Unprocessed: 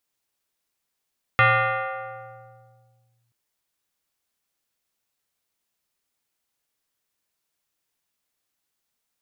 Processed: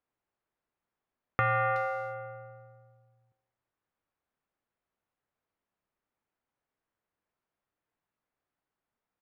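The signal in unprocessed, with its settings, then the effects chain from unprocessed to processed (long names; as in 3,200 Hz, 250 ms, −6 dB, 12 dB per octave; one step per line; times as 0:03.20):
two-operator FM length 1.93 s, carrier 118 Hz, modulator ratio 5.52, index 3.3, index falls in 1.89 s linear, decay 1.97 s, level −12 dB
downward compressor 4 to 1, threshold −24 dBFS
low-pass filter 1,500 Hz 12 dB per octave
far-end echo of a speakerphone 370 ms, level −13 dB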